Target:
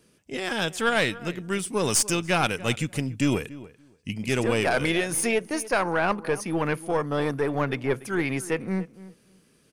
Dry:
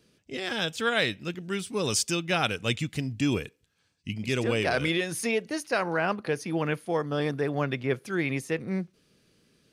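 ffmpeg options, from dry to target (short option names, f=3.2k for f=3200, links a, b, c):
-filter_complex "[0:a]equalizer=f=100:t=o:w=0.67:g=-3,equalizer=f=1k:t=o:w=0.67:g=3,equalizer=f=4k:t=o:w=0.67:g=-5,equalizer=f=10k:t=o:w=0.67:g=7,aeval=exprs='(tanh(5.62*val(0)+0.5)-tanh(0.5))/5.62':c=same,asplit=2[a][b];[b]adelay=288,lowpass=f=1.7k:p=1,volume=-17dB,asplit=2[c][d];[d]adelay=288,lowpass=f=1.7k:p=1,volume=0.16[e];[a][c][e]amix=inputs=3:normalize=0,volume=5dB"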